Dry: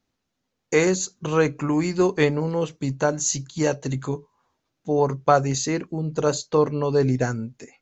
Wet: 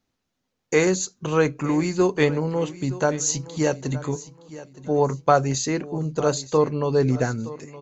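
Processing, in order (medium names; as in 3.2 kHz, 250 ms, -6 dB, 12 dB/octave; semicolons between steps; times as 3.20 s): feedback delay 918 ms, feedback 32%, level -17 dB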